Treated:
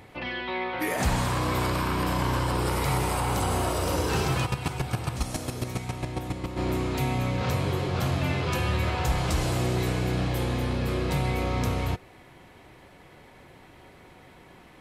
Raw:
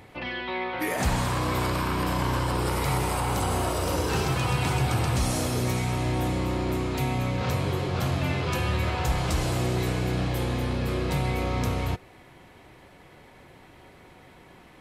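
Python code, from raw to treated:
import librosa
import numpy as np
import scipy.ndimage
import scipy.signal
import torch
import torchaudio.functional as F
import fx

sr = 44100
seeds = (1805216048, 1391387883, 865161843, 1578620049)

y = fx.chopper(x, sr, hz=7.3, depth_pct=65, duty_pct=15, at=(4.45, 6.56), fade=0.02)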